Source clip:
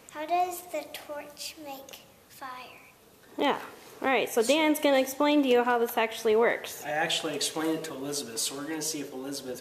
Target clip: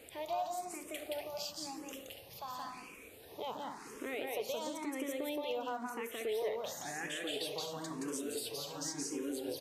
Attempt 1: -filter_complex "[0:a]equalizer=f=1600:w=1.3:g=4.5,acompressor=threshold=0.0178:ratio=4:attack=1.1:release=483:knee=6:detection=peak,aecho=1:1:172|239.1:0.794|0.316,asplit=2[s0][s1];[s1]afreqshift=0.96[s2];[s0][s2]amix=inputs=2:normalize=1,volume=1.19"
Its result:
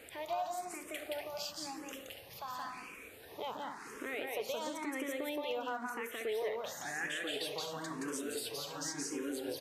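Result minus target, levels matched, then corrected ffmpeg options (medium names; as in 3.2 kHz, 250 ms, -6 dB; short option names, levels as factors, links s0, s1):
2 kHz band +4.0 dB
-filter_complex "[0:a]equalizer=f=1600:w=1.3:g=-3.5,acompressor=threshold=0.0178:ratio=4:attack=1.1:release=483:knee=6:detection=peak,aecho=1:1:172|239.1:0.794|0.316,asplit=2[s0][s1];[s1]afreqshift=0.96[s2];[s0][s2]amix=inputs=2:normalize=1,volume=1.19"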